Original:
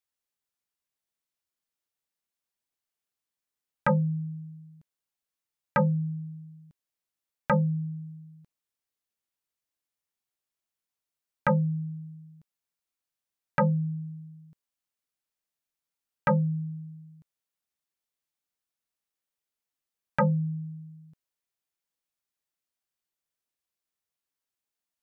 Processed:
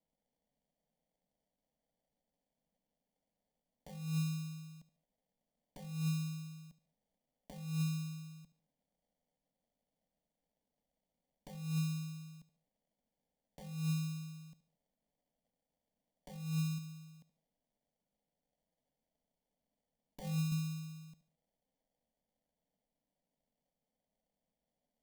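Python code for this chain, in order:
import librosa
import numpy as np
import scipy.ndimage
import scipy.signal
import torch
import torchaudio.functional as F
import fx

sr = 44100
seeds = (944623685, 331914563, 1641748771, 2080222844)

y = fx.low_shelf(x, sr, hz=230.0, db=-6.0, at=(16.78, 20.52))
y = fx.over_compress(y, sr, threshold_db=-31.0, ratio=-0.5)
y = fx.sample_hold(y, sr, seeds[0], rate_hz=1300.0, jitter_pct=0)
y = fx.fixed_phaser(y, sr, hz=360.0, stages=6)
y = fx.echo_feedback(y, sr, ms=73, feedback_pct=36, wet_db=-16.0)
y = y * 10.0 ** (-2.5 / 20.0)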